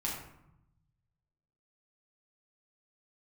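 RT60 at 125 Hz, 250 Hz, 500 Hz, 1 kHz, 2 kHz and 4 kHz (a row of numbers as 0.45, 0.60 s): 1.8, 1.2, 0.75, 0.85, 0.65, 0.45 s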